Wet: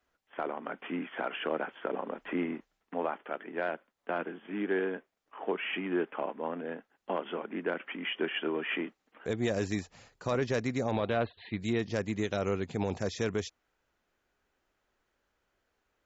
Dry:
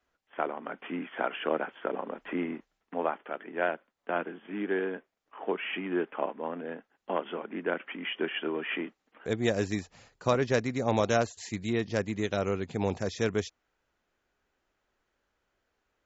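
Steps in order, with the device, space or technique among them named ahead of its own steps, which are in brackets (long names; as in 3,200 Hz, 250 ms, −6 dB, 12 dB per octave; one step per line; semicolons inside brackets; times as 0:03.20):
0:10.96–0:11.60: Butterworth low-pass 4,000 Hz 96 dB per octave
soft clipper into limiter (soft clipping −12 dBFS, distortion −27 dB; brickwall limiter −20.5 dBFS, peak gain reduction 6.5 dB)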